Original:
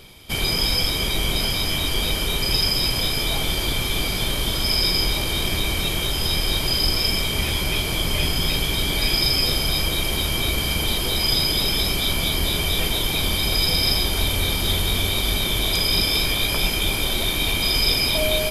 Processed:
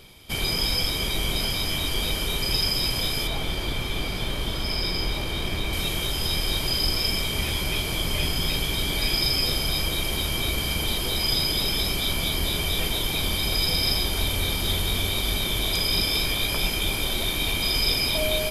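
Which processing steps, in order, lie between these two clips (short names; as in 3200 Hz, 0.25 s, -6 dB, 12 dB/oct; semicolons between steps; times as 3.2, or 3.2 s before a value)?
3.27–5.73 high shelf 4900 Hz -10 dB; gain -3.5 dB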